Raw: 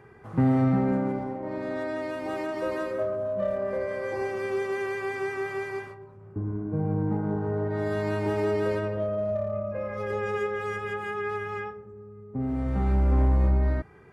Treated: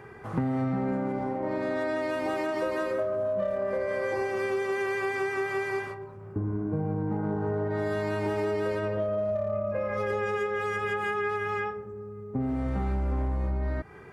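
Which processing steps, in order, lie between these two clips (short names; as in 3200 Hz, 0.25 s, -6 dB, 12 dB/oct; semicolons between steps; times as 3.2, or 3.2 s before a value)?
low shelf 350 Hz -4 dB; compressor, threshold -33 dBFS, peak gain reduction 11.5 dB; gain +7 dB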